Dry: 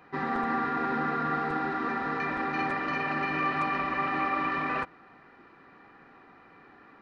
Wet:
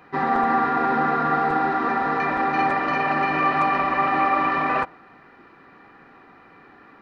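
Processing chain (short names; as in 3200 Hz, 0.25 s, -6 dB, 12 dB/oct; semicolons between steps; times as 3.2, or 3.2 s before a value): dynamic EQ 740 Hz, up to +7 dB, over -44 dBFS, Q 1.2; gain +5 dB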